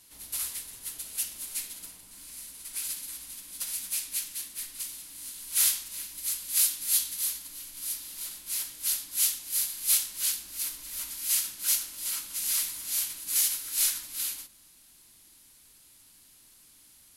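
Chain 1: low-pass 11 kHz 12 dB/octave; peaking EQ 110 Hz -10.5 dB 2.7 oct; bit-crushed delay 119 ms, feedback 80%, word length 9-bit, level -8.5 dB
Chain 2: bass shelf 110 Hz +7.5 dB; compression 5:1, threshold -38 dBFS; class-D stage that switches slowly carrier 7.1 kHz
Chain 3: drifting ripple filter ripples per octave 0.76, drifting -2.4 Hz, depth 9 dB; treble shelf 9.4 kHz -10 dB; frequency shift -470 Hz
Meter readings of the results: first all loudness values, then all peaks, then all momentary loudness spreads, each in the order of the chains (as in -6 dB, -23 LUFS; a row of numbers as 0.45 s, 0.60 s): -30.0 LUFS, -43.0 LUFS, -32.5 LUFS; -12.5 dBFS, -29.5 dBFS, -13.0 dBFS; 14 LU, 5 LU, 15 LU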